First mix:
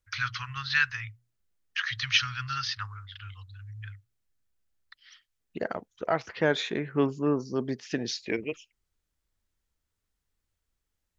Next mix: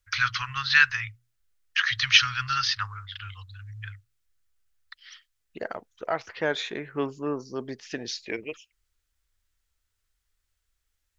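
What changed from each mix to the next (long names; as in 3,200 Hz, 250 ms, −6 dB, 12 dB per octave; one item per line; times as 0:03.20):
first voice +6.5 dB
master: add parametric band 170 Hz −7.5 dB 2.1 octaves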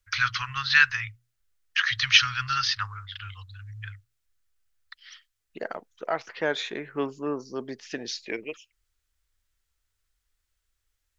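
second voice: add high-pass filter 150 Hz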